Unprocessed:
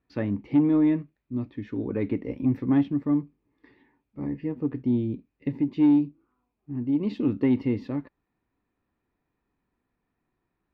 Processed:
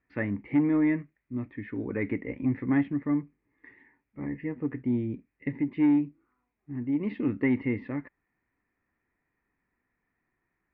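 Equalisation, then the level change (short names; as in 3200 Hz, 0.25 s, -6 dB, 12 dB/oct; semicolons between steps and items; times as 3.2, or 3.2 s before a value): synth low-pass 2000 Hz, resonance Q 4.6; -3.5 dB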